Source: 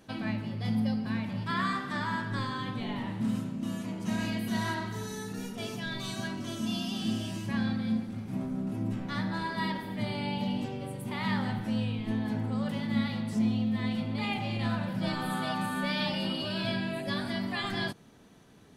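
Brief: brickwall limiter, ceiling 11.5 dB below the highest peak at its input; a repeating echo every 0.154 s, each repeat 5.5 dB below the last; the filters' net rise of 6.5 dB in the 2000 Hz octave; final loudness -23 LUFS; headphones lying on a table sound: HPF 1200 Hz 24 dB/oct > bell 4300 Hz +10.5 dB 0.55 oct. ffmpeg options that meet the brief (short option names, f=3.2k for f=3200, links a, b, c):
-af "equalizer=f=2k:t=o:g=7.5,alimiter=level_in=2.5dB:limit=-24dB:level=0:latency=1,volume=-2.5dB,highpass=f=1.2k:w=0.5412,highpass=f=1.2k:w=1.3066,equalizer=f=4.3k:t=o:w=0.55:g=10.5,aecho=1:1:154|308|462|616|770|924|1078:0.531|0.281|0.149|0.079|0.0419|0.0222|0.0118,volume=12dB"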